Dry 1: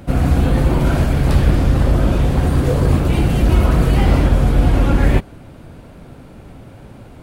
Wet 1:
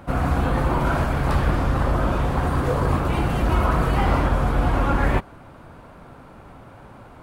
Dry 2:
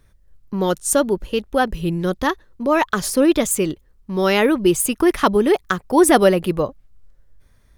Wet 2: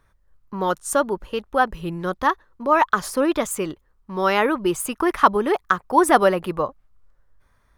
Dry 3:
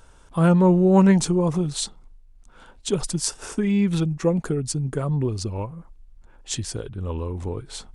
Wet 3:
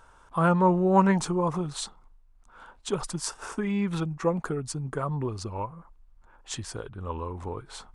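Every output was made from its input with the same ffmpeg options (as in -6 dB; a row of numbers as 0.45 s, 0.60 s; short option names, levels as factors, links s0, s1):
-af "equalizer=f=1100:w=0.88:g=12.5,volume=0.398"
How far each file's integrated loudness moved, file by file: -6.0 LU, -3.0 LU, -5.5 LU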